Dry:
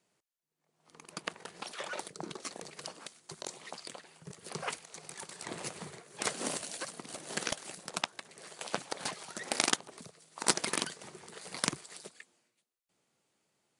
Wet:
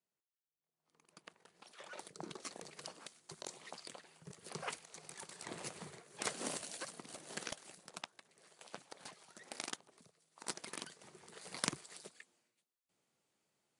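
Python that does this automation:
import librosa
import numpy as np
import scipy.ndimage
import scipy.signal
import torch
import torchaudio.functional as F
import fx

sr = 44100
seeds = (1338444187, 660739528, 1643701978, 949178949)

y = fx.gain(x, sr, db=fx.line((1.58, -18.0), (2.21, -5.5), (6.94, -5.5), (8.29, -15.0), (10.63, -15.0), (11.47, -5.0)))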